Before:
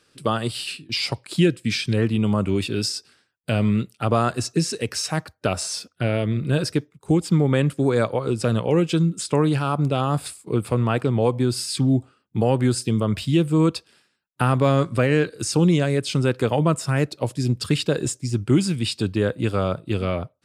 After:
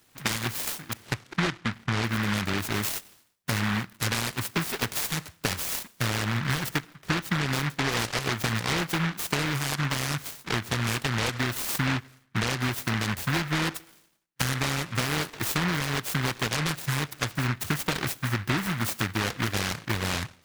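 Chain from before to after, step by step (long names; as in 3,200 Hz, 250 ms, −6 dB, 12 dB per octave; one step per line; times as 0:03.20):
0:00.93–0:02.04: elliptic low-pass filter 1,100 Hz
downward compressor, threshold −24 dBFS, peak gain reduction 11.5 dB
four-comb reverb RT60 0.69 s, combs from 27 ms, DRR 19 dB
short delay modulated by noise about 1,500 Hz, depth 0.49 ms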